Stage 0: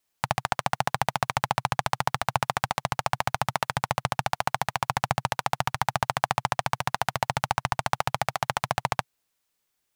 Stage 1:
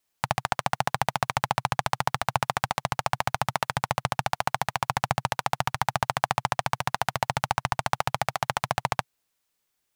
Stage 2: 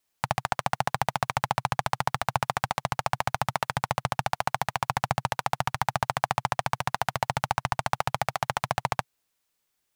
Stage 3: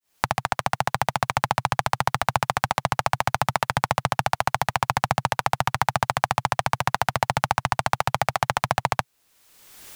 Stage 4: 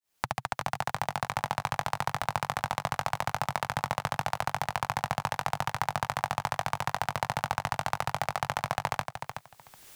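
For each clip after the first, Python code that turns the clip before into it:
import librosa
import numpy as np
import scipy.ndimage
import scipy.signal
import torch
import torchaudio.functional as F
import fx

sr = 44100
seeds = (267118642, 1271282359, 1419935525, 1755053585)

y1 = x
y2 = 10.0 ** (-5.0 / 20.0) * np.tanh(y1 / 10.0 ** (-5.0 / 20.0))
y3 = fx.fade_in_head(y2, sr, length_s=2.24)
y3 = fx.band_squash(y3, sr, depth_pct=100)
y3 = F.gain(torch.from_numpy(y3), 4.5).numpy()
y4 = fx.echo_feedback(y3, sr, ms=373, feedback_pct=16, wet_db=-7.5)
y4 = F.gain(torch.from_numpy(y4), -8.0).numpy()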